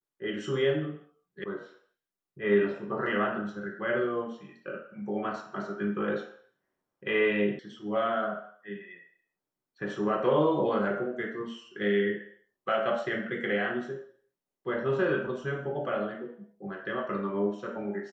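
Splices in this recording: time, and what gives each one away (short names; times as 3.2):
1.44 sound cut off
7.59 sound cut off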